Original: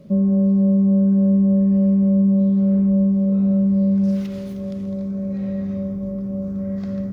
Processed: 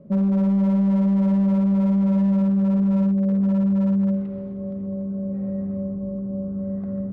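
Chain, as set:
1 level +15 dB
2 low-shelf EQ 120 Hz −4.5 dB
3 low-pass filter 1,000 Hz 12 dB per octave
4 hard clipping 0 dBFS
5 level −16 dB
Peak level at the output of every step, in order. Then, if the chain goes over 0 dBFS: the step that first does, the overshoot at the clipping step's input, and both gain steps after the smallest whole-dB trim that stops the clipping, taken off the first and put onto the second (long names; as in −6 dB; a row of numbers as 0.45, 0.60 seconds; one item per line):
+5.0, +4.0, +4.0, 0.0, −16.0 dBFS
step 1, 4.0 dB
step 1 +11 dB, step 5 −12 dB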